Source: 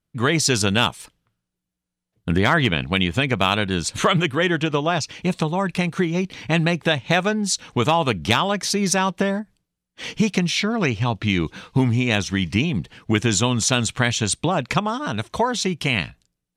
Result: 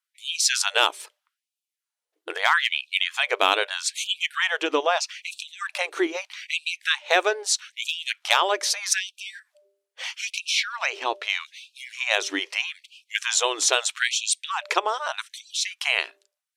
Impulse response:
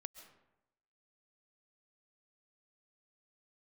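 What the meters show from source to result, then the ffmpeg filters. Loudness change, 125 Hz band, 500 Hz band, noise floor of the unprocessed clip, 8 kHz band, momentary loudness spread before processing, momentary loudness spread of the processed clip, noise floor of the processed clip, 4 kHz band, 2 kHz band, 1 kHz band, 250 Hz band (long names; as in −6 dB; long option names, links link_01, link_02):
−3.0 dB, below −40 dB, −5.5 dB, −83 dBFS, 0.0 dB, 5 LU, 13 LU, below −85 dBFS, 0.0 dB, −0.5 dB, −3.0 dB, −17.5 dB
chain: -af "bandreject=frequency=198.1:width_type=h:width=4,bandreject=frequency=396.2:width_type=h:width=4,bandreject=frequency=594.3:width_type=h:width=4,afftfilt=real='re*gte(b*sr/1024,290*pow(2400/290,0.5+0.5*sin(2*PI*0.79*pts/sr)))':imag='im*gte(b*sr/1024,290*pow(2400/290,0.5+0.5*sin(2*PI*0.79*pts/sr)))':win_size=1024:overlap=0.75"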